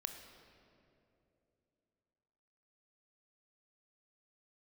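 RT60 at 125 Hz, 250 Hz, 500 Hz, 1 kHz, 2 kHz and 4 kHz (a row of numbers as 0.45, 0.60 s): 3.4, 3.4, 3.3, 2.5, 2.0, 1.6 s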